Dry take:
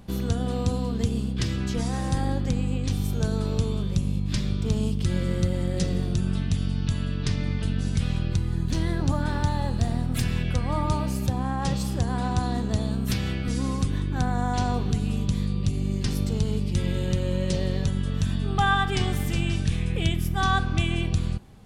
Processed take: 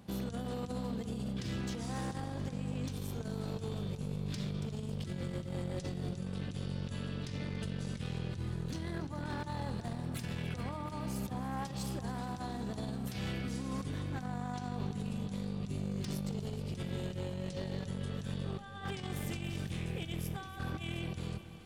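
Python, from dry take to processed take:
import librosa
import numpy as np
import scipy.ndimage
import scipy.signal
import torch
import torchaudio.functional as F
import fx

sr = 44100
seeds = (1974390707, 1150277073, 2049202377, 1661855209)

p1 = scipy.signal.sosfilt(scipy.signal.butter(2, 100.0, 'highpass', fs=sr, output='sos'), x)
p2 = fx.over_compress(p1, sr, threshold_db=-29.0, ratio=-0.5)
p3 = np.clip(p2, -10.0 ** (-25.0 / 20.0), 10.0 ** (-25.0 / 20.0))
p4 = p3 + fx.echo_heads(p3, sr, ms=142, heads='second and third', feedback_pct=68, wet_db=-17.0, dry=0)
y = F.gain(torch.from_numpy(p4), -7.5).numpy()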